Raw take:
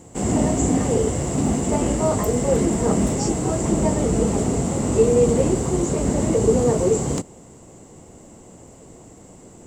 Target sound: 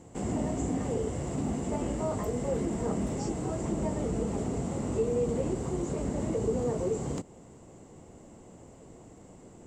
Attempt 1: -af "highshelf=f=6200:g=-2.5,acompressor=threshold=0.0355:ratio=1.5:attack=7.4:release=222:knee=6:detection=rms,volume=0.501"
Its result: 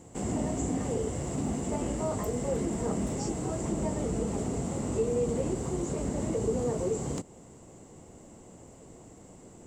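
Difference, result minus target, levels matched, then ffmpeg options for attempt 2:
8 kHz band +4.0 dB
-af "highshelf=f=6200:g=-10,acompressor=threshold=0.0355:ratio=1.5:attack=7.4:release=222:knee=6:detection=rms,volume=0.501"

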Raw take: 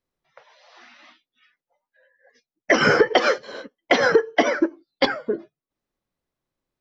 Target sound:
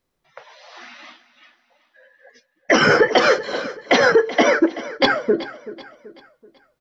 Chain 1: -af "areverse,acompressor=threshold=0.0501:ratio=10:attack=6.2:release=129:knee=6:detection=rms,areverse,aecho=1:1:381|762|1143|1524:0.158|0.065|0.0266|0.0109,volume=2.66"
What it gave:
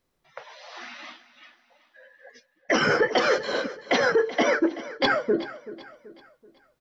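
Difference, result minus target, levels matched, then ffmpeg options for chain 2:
compression: peak gain reduction +7.5 dB
-af "areverse,acompressor=threshold=0.133:ratio=10:attack=6.2:release=129:knee=6:detection=rms,areverse,aecho=1:1:381|762|1143|1524:0.158|0.065|0.0266|0.0109,volume=2.66"

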